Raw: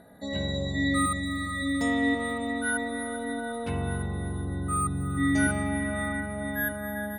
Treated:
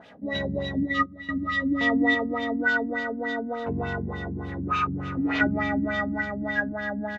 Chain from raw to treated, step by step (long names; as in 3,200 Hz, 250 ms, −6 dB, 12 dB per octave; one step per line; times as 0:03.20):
running median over 9 samples
0:04.48–0:05.41: gain into a clipping stage and back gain 26.5 dB
downsampling to 16,000 Hz
bit reduction 10 bits
spectral tilt +2 dB per octave
single-tap delay 328 ms −21.5 dB
auto-filter low-pass sine 3.4 Hz 220–3,400 Hz
0:00.83–0:01.29: expander for the loud parts 2.5 to 1, over −31 dBFS
level +3.5 dB